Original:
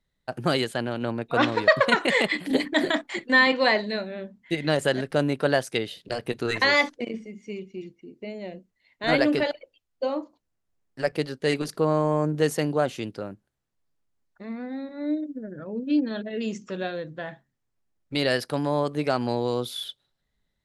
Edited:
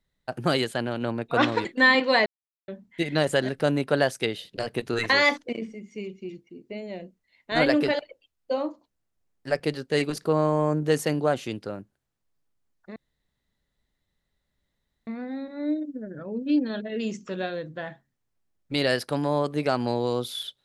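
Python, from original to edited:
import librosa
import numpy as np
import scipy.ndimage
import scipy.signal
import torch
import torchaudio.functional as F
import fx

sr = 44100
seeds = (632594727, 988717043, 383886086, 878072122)

y = fx.edit(x, sr, fx.cut(start_s=1.65, length_s=1.52),
    fx.silence(start_s=3.78, length_s=0.42),
    fx.insert_room_tone(at_s=14.48, length_s=2.11), tone=tone)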